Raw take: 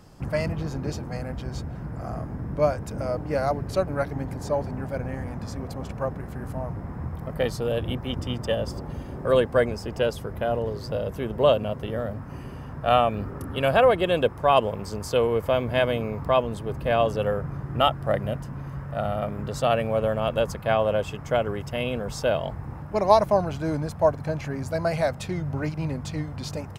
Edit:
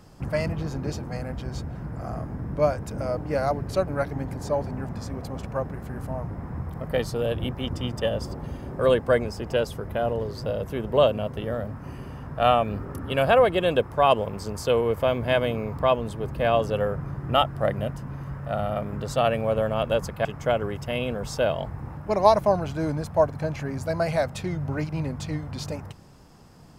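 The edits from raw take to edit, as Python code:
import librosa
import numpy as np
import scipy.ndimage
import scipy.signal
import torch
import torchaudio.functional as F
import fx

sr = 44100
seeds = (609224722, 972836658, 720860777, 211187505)

y = fx.edit(x, sr, fx.cut(start_s=4.89, length_s=0.46),
    fx.cut(start_s=20.71, length_s=0.39), tone=tone)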